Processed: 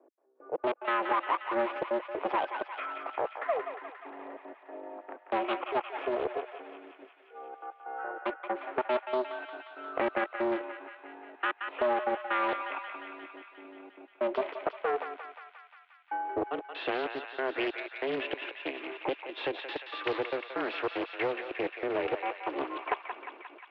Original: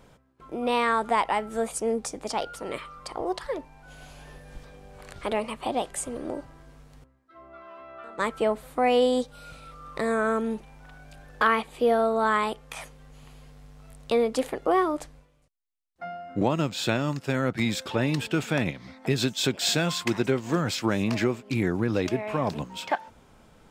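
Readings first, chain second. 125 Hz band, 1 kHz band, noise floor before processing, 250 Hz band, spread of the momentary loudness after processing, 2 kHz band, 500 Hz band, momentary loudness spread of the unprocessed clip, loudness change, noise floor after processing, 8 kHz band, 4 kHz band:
under -25 dB, -4.0 dB, -60 dBFS, -10.5 dB, 16 LU, -4.0 dB, -5.0 dB, 15 LU, -6.5 dB, -59 dBFS, under -40 dB, -10.0 dB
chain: one diode to ground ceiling -27 dBFS; low-pass opened by the level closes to 480 Hz, open at -25.5 dBFS; AGC; in parallel at 0 dB: limiter -11.5 dBFS, peak gain reduction 9.5 dB; on the sum: compressor 2.5:1, threshold -20 dBFS, peak gain reduction 9 dB; step gate "x..xxxx." 189 bpm -60 dB; on a send: thinning echo 0.177 s, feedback 78%, high-pass 740 Hz, level -5.5 dB; on the sum: mistuned SSB +130 Hz 180–2800 Hz; Doppler distortion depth 0.29 ms; gain -8.5 dB

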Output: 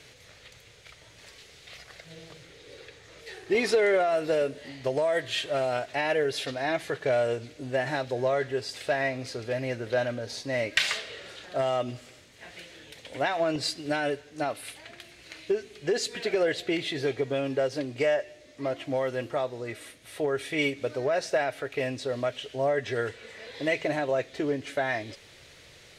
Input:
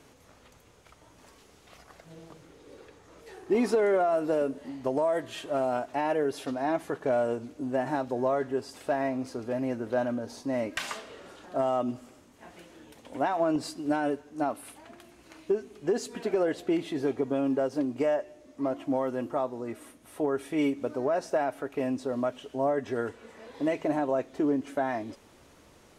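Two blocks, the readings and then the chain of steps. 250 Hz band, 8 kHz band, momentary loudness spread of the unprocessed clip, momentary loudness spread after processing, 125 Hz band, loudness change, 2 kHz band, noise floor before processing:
-5.0 dB, +6.0 dB, 9 LU, 20 LU, +4.0 dB, +1.0 dB, +8.5 dB, -57 dBFS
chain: graphic EQ 125/250/500/1000/2000/4000/8000 Hz +7/-9/+5/-7/+10/+11/+3 dB

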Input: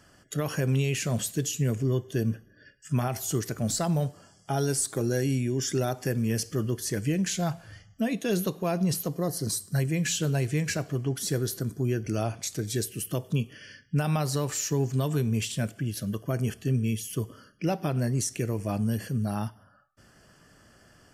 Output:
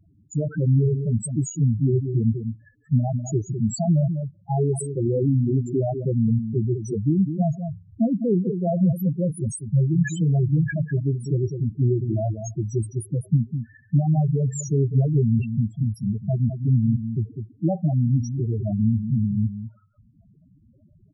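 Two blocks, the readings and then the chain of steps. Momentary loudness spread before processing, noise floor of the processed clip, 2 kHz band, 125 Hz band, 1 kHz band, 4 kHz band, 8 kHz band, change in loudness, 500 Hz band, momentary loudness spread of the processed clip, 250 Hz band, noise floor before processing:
6 LU, -57 dBFS, -4.5 dB, +7.5 dB, -1.0 dB, under -15 dB, -6.0 dB, +5.5 dB, +3.0 dB, 7 LU, +6.0 dB, -59 dBFS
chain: Wiener smoothing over 15 samples; echo 0.202 s -8 dB; loudest bins only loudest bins 4; gain +7.5 dB

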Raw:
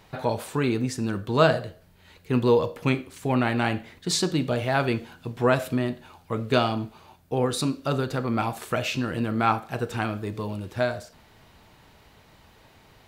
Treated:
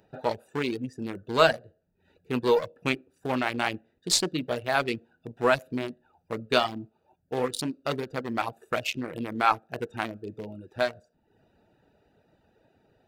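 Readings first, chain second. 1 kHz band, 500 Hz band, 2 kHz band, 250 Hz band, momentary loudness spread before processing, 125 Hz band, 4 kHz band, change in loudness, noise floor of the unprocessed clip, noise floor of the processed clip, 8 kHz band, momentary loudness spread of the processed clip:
-1.0 dB, -2.5 dB, 0.0 dB, -6.5 dB, 10 LU, -11.0 dB, +0.5 dB, -2.5 dB, -56 dBFS, -72 dBFS, +1.0 dB, 13 LU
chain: Wiener smoothing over 41 samples; RIAA curve recording; in parallel at -10.5 dB: one-sided clip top -26 dBFS; on the sum: reverb removal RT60 0.58 s; high shelf 5700 Hz -10.5 dB

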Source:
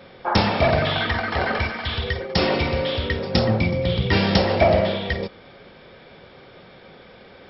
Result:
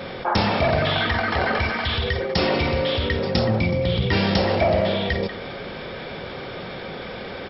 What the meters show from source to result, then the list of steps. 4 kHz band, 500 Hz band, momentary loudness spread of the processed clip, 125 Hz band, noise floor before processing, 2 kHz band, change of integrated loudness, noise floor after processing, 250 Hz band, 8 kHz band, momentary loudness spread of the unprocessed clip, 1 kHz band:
+0.5 dB, 0.0 dB, 13 LU, -0.5 dB, -47 dBFS, +0.5 dB, -0.5 dB, -34 dBFS, -0.5 dB, n/a, 8 LU, 0.0 dB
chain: speakerphone echo 0.19 s, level -22 dB; fast leveller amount 50%; gain -4 dB

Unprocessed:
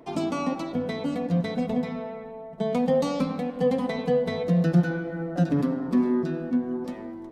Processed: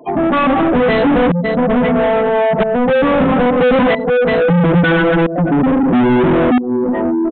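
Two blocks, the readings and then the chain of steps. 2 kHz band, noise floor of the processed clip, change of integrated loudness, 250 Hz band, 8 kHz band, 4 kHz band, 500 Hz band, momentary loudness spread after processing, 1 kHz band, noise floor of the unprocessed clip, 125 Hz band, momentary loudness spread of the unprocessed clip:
+20.0 dB, -19 dBFS, +13.0 dB, +12.0 dB, n/a, +14.0 dB, +14.5 dB, 3 LU, +18.0 dB, -39 dBFS, +9.5 dB, 9 LU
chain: spectral gate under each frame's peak -15 dB strong; low shelf 240 Hz +5.5 dB; tremolo saw up 0.76 Hz, depth 95%; overdrive pedal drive 38 dB, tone 2700 Hz, clips at -12 dBFS; downsampling 8000 Hz; gain +7 dB

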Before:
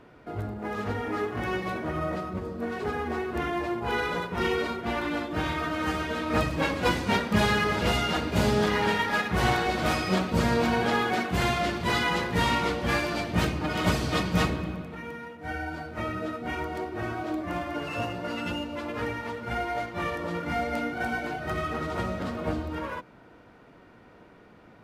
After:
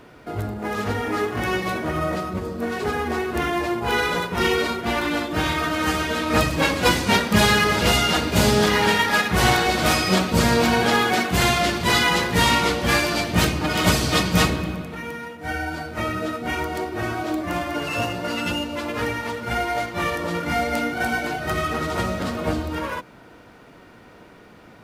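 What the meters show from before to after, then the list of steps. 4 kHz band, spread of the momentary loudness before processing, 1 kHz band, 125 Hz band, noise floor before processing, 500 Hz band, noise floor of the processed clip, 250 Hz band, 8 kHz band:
+10.0 dB, 9 LU, +6.0 dB, +5.5 dB, -53 dBFS, +5.5 dB, -47 dBFS, +5.5 dB, +13.5 dB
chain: high shelf 3800 Hz +10 dB; gain +5.5 dB

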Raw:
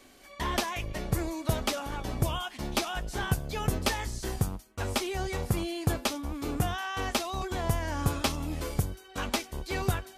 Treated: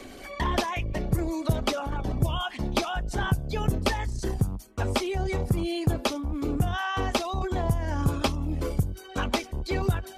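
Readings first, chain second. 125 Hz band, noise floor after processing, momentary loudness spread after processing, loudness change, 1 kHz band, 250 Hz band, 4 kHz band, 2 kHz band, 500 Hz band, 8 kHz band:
+4.5 dB, -44 dBFS, 4 LU, +3.5 dB, +3.0 dB, +4.5 dB, +1.0 dB, +2.0 dB, +4.0 dB, -3.0 dB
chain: formant sharpening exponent 1.5; three-band squash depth 40%; gain +4 dB

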